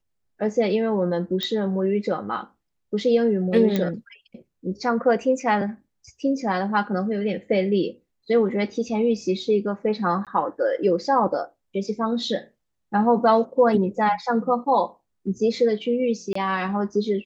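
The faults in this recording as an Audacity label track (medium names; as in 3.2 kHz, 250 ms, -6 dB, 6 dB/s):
1.430000	1.430000	pop -14 dBFS
3.760000	3.760000	pop -11 dBFS
10.250000	10.270000	dropout 17 ms
16.330000	16.350000	dropout 24 ms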